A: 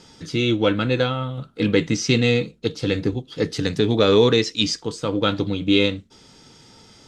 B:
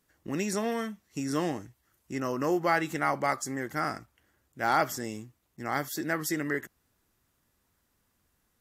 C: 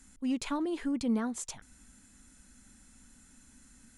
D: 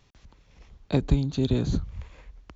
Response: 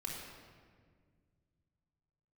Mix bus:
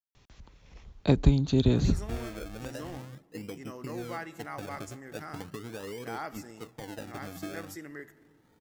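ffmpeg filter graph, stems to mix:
-filter_complex "[0:a]lowpass=f=2k:w=0.5412,lowpass=f=2k:w=1.3066,acompressor=threshold=-21dB:ratio=12,acrusher=samples=31:mix=1:aa=0.000001:lfo=1:lforange=31:lforate=0.4,adelay=1750,volume=-15.5dB[a];[1:a]adelay=1450,volume=-14dB,asplit=2[b][c];[c]volume=-13.5dB[d];[3:a]adelay=150,volume=1dB[e];[4:a]atrim=start_sample=2205[f];[d][f]afir=irnorm=-1:irlink=0[g];[a][b][e][g]amix=inputs=4:normalize=0"

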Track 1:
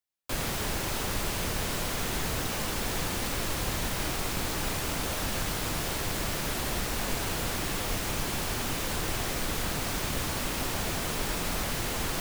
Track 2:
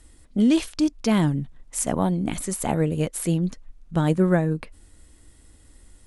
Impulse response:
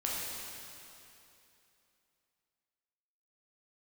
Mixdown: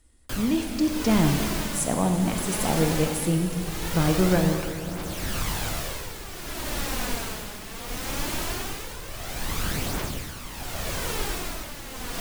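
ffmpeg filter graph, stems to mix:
-filter_complex "[0:a]aphaser=in_gain=1:out_gain=1:delay=4.9:decay=0.41:speed=0.2:type=triangular,tremolo=f=0.72:d=0.67,volume=1.5dB[a];[1:a]dynaudnorm=f=460:g=3:m=11.5dB,volume=-13dB,asplit=2[b][c];[c]volume=-4dB[d];[2:a]atrim=start_sample=2205[e];[d][e]afir=irnorm=-1:irlink=0[f];[a][b][f]amix=inputs=3:normalize=0"

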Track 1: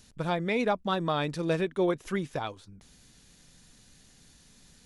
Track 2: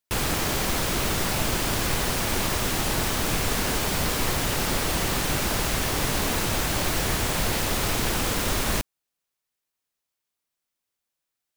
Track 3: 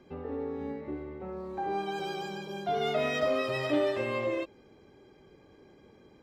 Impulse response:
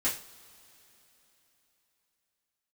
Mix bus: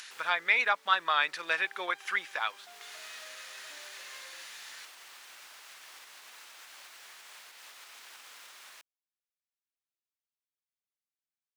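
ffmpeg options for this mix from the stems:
-filter_complex "[0:a]equalizer=f=1.7k:t=o:w=1.9:g=10.5,acompressor=mode=upward:threshold=-36dB:ratio=2.5,volume=1.5dB,asplit=2[a][b];[1:a]alimiter=limit=-20.5dB:level=0:latency=1:release=359,volume=-14dB[c];[2:a]acompressor=threshold=-39dB:ratio=2.5,volume=-7dB[d];[b]apad=whole_len=509881[e];[c][e]sidechaincompress=threshold=-29dB:ratio=8:attack=36:release=673[f];[a][f][d]amix=inputs=3:normalize=0,highpass=1.3k,highshelf=f=8k:g=-8.5"

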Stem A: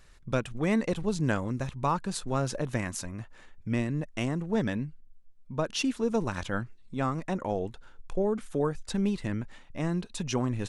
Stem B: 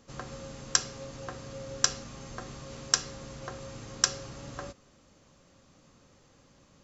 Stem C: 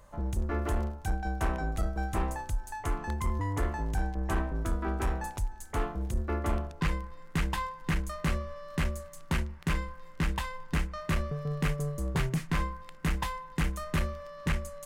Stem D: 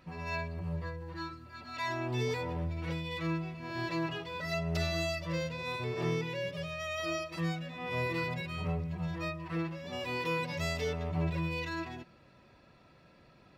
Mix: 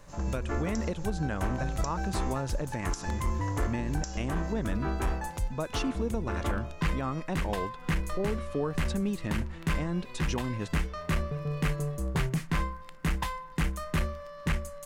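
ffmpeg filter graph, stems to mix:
-filter_complex "[0:a]highshelf=f=9.2k:g=-10,volume=-0.5dB,asplit=2[a][b];[1:a]highshelf=f=4.9k:t=q:w=1.5:g=6,volume=-7.5dB[c];[2:a]volume=0.5dB[d];[3:a]alimiter=level_in=3dB:limit=-24dB:level=0:latency=1,volume=-3dB,volume=-13dB[e];[b]apad=whole_len=301487[f];[c][f]sidechaincompress=threshold=-30dB:ratio=8:attack=16:release=137[g];[a][g][d][e]amix=inputs=4:normalize=0,alimiter=limit=-21dB:level=0:latency=1:release=142"

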